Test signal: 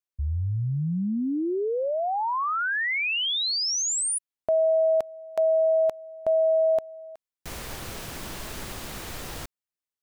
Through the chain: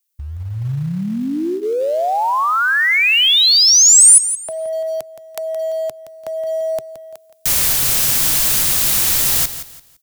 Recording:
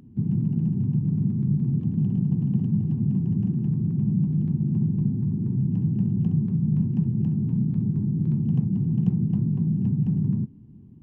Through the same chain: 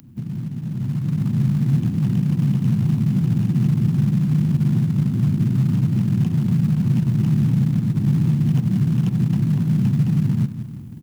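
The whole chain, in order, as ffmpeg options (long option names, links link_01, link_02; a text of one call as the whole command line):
ffmpeg -i in.wav -filter_complex "[0:a]acrossover=split=210|470[link_01][link_02][link_03];[link_01]acompressor=threshold=-27dB:ratio=10[link_04];[link_02]acompressor=threshold=-33dB:ratio=4[link_05];[link_03]acompressor=threshold=-28dB:ratio=5[link_06];[link_04][link_05][link_06]amix=inputs=3:normalize=0,asplit=2[link_07][link_08];[link_08]aecho=0:1:170|340|510:0.237|0.0664|0.0186[link_09];[link_07][link_09]amix=inputs=2:normalize=0,alimiter=limit=-23.5dB:level=0:latency=1:release=304,crystalizer=i=7:c=0,equalizer=frequency=130:width_type=o:width=0.53:gain=6,bandreject=frequency=400:width=12,dynaudnorm=framelen=730:gausssize=3:maxgain=9.5dB,asplit=2[link_10][link_11];[link_11]acrusher=bits=3:mode=log:mix=0:aa=0.000001,volume=-9dB[link_12];[link_10][link_12]amix=inputs=2:normalize=0,volume=-2.5dB" out.wav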